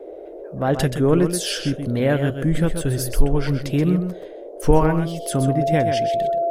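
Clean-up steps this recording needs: notch 680 Hz, Q 30; noise print and reduce 29 dB; inverse comb 0.128 s -8 dB

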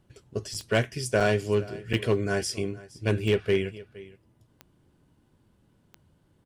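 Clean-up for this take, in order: clip repair -14.5 dBFS; de-click; interpolate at 0.54/1.2/1.93, 5.8 ms; inverse comb 0.466 s -20 dB

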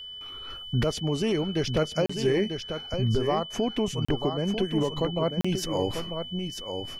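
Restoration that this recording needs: notch 3000 Hz, Q 30; interpolate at 2.06/4.05/5.41, 35 ms; inverse comb 0.944 s -7 dB

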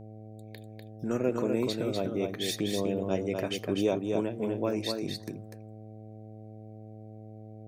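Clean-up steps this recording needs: de-hum 108.3 Hz, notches 7; inverse comb 0.247 s -4.5 dB

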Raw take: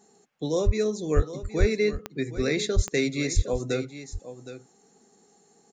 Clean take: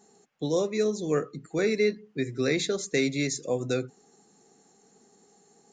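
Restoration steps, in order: de-click; de-plosive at 0.65/1.15/1.59/2.75/3.35; inverse comb 0.766 s -13 dB

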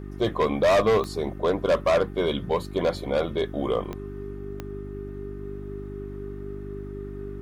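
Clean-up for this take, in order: de-click; de-hum 49.5 Hz, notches 8; notch 400 Hz, Q 30

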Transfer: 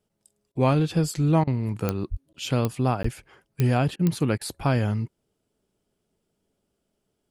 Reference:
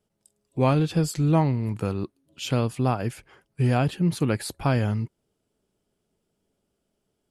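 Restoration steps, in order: de-click; 2.1–2.22 HPF 140 Hz 24 dB/oct; 3.02–3.14 HPF 140 Hz 24 dB/oct; interpolate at 2.33/3.03, 14 ms; interpolate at 0.52/1.44/3.96/4.38, 31 ms

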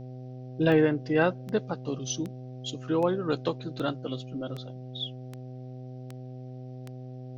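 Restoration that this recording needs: de-click; de-hum 127.4 Hz, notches 6; expander -33 dBFS, range -21 dB

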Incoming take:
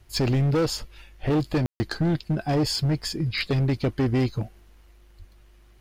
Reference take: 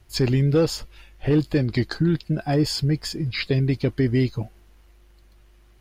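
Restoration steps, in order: clip repair -18.5 dBFS; 5.18–5.3 HPF 140 Hz 24 dB/oct; room tone fill 1.66–1.8

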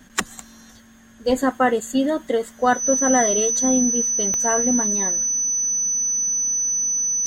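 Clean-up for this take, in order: clip repair -5 dBFS; de-click; notch 6000 Hz, Q 30

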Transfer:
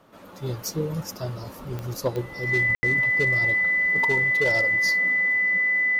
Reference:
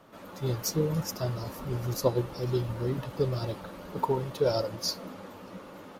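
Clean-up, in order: clip repair -16 dBFS; de-click; notch 2000 Hz, Q 30; room tone fill 2.75–2.83

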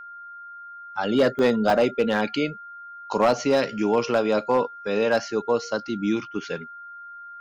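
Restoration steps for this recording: clip repair -12.5 dBFS; notch 1400 Hz, Q 30; interpolate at 1.39/1.7, 2.9 ms

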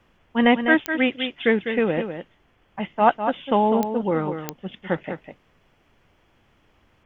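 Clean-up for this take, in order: de-click; expander -54 dBFS, range -21 dB; inverse comb 0.201 s -8.5 dB

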